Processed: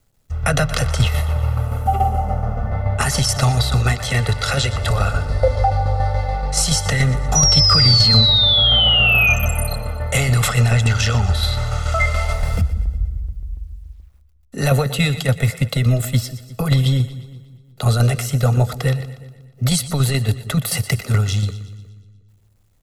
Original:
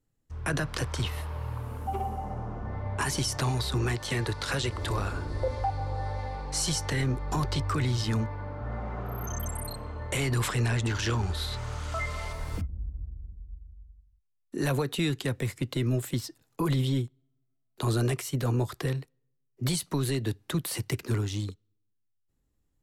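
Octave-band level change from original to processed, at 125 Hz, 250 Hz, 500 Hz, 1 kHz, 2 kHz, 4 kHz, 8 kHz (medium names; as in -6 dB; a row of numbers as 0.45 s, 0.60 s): +13.0 dB, +7.5 dB, +9.5 dB, +11.5 dB, +14.5 dB, +20.0 dB, +13.5 dB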